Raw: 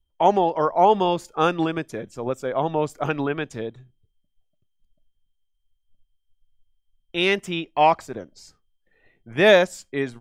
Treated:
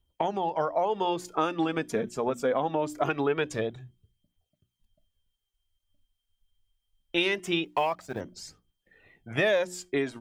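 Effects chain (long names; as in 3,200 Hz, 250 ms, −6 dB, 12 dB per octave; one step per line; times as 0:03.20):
0:07.65–0:08.21: mu-law and A-law mismatch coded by A
high-pass filter 71 Hz 6 dB per octave
mains-hum notches 60/120/180/240/300/360 Hz
downward compressor 12 to 1, threshold −26 dBFS, peak gain reduction 16.5 dB
phase shifter 0.23 Hz, delay 4.8 ms, feedback 42%
level +3 dB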